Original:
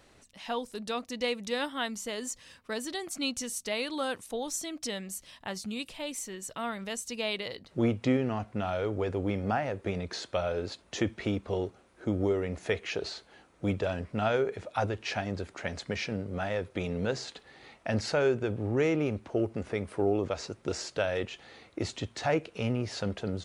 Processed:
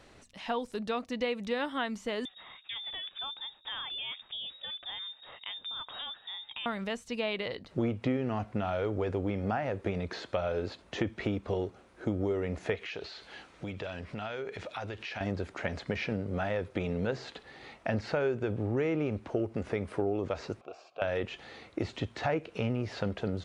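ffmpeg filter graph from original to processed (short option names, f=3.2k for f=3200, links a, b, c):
-filter_complex "[0:a]asettb=1/sr,asplit=3[a][b][c];[a]atrim=end=2.254[d];[b]atrim=start=2.25:end=6.66,asetpts=PTS-STARTPTS,afade=t=in:d=0.004:c=qsin,afade=t=out:st=4.406:d=0.004:c=qsin,lowshelf=f=450:g=9,acompressor=threshold=-37dB:ratio=3:attack=3.2:release=140:knee=1:detection=peak,lowpass=f=3.2k:t=q:w=0.5098,lowpass=f=3.2k:t=q:w=0.6013,lowpass=f=3.2k:t=q:w=0.9,lowpass=f=3.2k:t=q:w=2.563,afreqshift=-3800[e];[c]atrim=start=6.656[f];[d][e]acrossfade=d=0.004:c1=hsin:c2=qsin[g];[g][f]acrossfade=d=0.004:c1=qsin:c2=hsin,asettb=1/sr,asplit=3[h][i][j];[h]atrim=end=12.754[k];[i]atrim=start=12.75:end=15.21,asetpts=PTS-STARTPTS,afade=t=in:d=0.004:c=qsin,afade=t=out:st=2.456:d=0.004:c=qsin,equalizer=f=3.5k:w=0.44:g=9,acompressor=threshold=-40dB:ratio=4:attack=3.2:release=140:knee=1:detection=peak[l];[j]atrim=start=15.206[m];[k][l]acrossfade=d=0.004:c1=hsin:c2=qsin[n];[n][m]acrossfade=d=0.004:c1=qsin:c2=hsin,asettb=1/sr,asplit=3[o][p][q];[o]atrim=end=20.614[r];[p]atrim=start=20.61:end=21.02,asetpts=PTS-STARTPTS,afade=t=in:d=0.004:c=qsin,afade=t=out:st=0.406:d=0.004:c=qsin,acompressor=mode=upward:threshold=-40dB:ratio=2.5:attack=3.2:release=140:knee=2.83:detection=peak,asplit=3[s][t][u];[s]bandpass=f=730:t=q:w=8,volume=0dB[v];[t]bandpass=f=1.09k:t=q:w=8,volume=-6dB[w];[u]bandpass=f=2.44k:t=q:w=8,volume=-9dB[x];[v][w][x]amix=inputs=3:normalize=0[y];[q]atrim=start=21.016[z];[r][y]acrossfade=d=0.004:c1=hsin:c2=qsin[aa];[aa][z]acrossfade=d=0.004:c1=qsin:c2=hsin,acrossover=split=3400[ab][ac];[ac]acompressor=threshold=-53dB:ratio=4:attack=1:release=60[ad];[ab][ad]amix=inputs=2:normalize=0,highshelf=f=9.2k:g=-11.5,acompressor=threshold=-32dB:ratio=3,volume=3.5dB"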